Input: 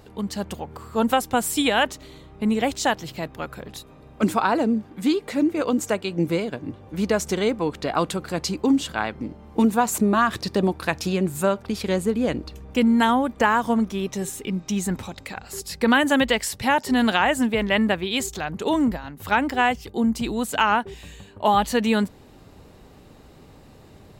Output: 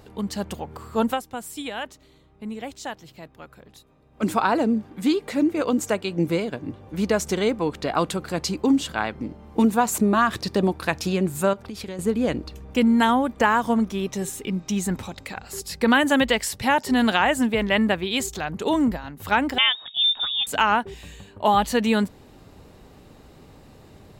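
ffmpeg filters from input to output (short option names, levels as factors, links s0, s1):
-filter_complex "[0:a]asettb=1/sr,asplit=3[s0][s1][s2];[s0]atrim=end=11.534[s3];[s1]atrim=start=11.53:end=11.99,asetpts=PTS-STARTPTS,afade=t=in:d=0.004:c=qsin,afade=t=out:st=0.456:d=0.004:c=qsin,acompressor=threshold=0.0282:ratio=5:attack=3.2:release=140:knee=1:detection=peak[s4];[s2]atrim=start=11.986[s5];[s3][s4]acrossfade=d=0.004:c1=hsin:c2=qsin[s6];[s6][s5]acrossfade=d=0.004:c1=qsin:c2=hsin,asettb=1/sr,asplit=3[s7][s8][s9];[s7]atrim=end=19.584[s10];[s8]atrim=start=19.58:end=20.47,asetpts=PTS-STARTPTS,afade=t=in:d=0.004:c=qsin,afade=t=out:st=0.886:d=0.004:c=qsin,lowpass=f=3200:t=q:w=0.5098,lowpass=f=3200:t=q:w=0.6013,lowpass=f=3200:t=q:w=0.9,lowpass=f=3200:t=q:w=2.563,afreqshift=-3800[s11];[s9]atrim=start=20.466[s12];[s10][s11]acrossfade=d=0.004:c1=hsin:c2=qsin[s13];[s13][s12]acrossfade=d=0.004:c1=qsin:c2=hsin,asplit=3[s14][s15][s16];[s14]atrim=end=1.23,asetpts=PTS-STARTPTS,afade=t=out:st=1:d=0.23:silence=0.266073[s17];[s15]atrim=start=1.23:end=4.11,asetpts=PTS-STARTPTS,volume=0.266[s18];[s16]atrim=start=4.11,asetpts=PTS-STARTPTS,afade=t=in:d=0.23:silence=0.266073[s19];[s17][s18][s19]concat=n=3:v=0:a=1"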